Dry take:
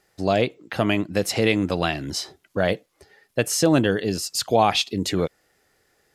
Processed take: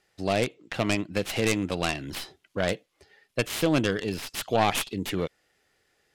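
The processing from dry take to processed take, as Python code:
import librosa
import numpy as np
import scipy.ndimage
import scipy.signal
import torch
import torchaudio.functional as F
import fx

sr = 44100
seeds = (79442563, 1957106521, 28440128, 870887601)

y = fx.tracing_dist(x, sr, depth_ms=0.38)
y = scipy.signal.sosfilt(scipy.signal.butter(2, 12000.0, 'lowpass', fs=sr, output='sos'), y)
y = fx.peak_eq(y, sr, hz=2900.0, db=6.0, octaves=1.1)
y = y * 10.0 ** (-6.0 / 20.0)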